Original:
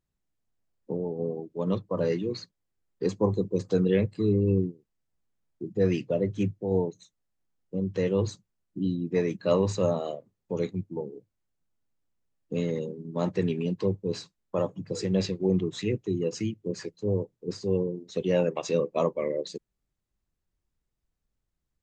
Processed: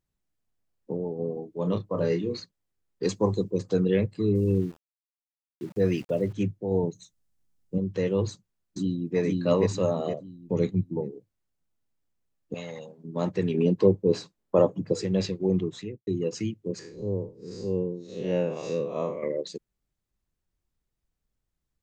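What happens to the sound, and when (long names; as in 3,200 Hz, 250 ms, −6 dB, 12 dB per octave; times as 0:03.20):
0:01.33–0:02.40: double-tracking delay 29 ms −6.5 dB
0:03.03–0:03.51: high-shelf EQ 2,000 Hz +9.5 dB
0:04.35–0:06.33: centre clipping without the shift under −46 dBFS
0:06.83–0:07.78: bass and treble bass +8 dB, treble +6 dB
0:08.29–0:09.19: delay throw 470 ms, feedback 30%, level −1 dB
0:09.99–0:11.12: low-shelf EQ 280 Hz +9 dB
0:12.54–0:13.04: low shelf with overshoot 520 Hz −10.5 dB, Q 3
0:13.54–0:14.94: parametric band 410 Hz +8.5 dB 2.9 octaves
0:15.64–0:16.07: fade out and dull
0:16.79–0:19.23: spectrum smeared in time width 139 ms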